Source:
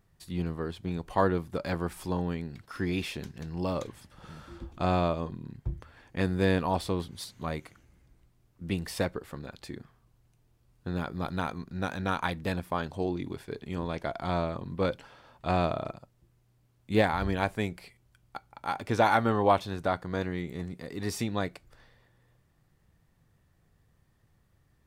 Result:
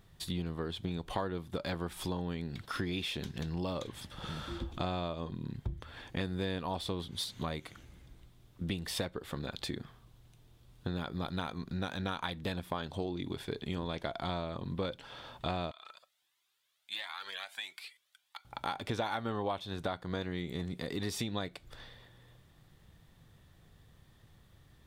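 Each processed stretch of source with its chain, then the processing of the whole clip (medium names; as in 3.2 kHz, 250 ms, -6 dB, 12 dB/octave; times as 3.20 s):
15.71–18.45 s: high-pass 1.5 kHz + compression 3:1, threshold -42 dBFS + Shepard-style flanger rising 1.5 Hz
whole clip: peaking EQ 3.5 kHz +9.5 dB 0.43 oct; compression 5:1, threshold -40 dBFS; trim +6 dB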